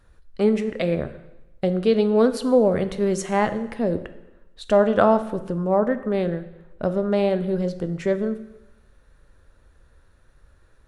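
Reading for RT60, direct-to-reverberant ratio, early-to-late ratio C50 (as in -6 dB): 1.0 s, 10.5 dB, 13.0 dB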